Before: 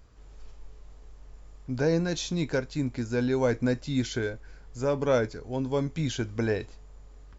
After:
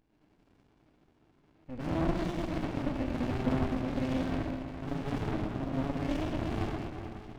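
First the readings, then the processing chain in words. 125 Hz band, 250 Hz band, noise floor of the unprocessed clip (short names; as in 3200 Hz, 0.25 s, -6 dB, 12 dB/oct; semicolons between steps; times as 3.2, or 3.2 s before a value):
-4.0 dB, -2.5 dB, -50 dBFS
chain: flange 1.8 Hz, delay 6 ms, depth 7.3 ms, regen +78%; speaker cabinet 290–3100 Hz, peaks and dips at 310 Hz +8 dB, 540 Hz -6 dB, 910 Hz -8 dB, 1500 Hz -7 dB, 2400 Hz +9 dB; hard clip -30 dBFS, distortion -11 dB; on a send: diffused feedback echo 0.539 s, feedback 56%, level -15.5 dB; on the sum: digital reverb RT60 2.3 s, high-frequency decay 0.55×, pre-delay 10 ms, DRR -6 dB; running maximum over 65 samples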